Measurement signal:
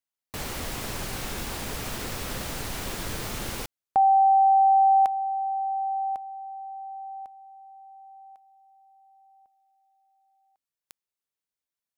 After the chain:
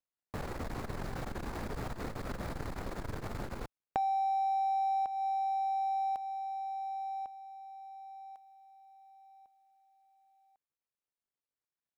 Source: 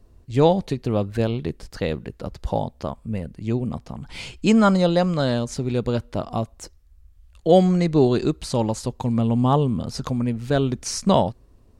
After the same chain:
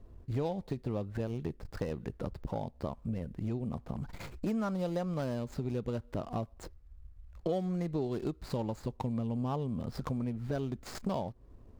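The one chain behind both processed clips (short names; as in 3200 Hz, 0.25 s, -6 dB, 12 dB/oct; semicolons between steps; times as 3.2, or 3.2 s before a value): median filter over 15 samples; compressor 6:1, threshold -31 dBFS; core saturation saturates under 230 Hz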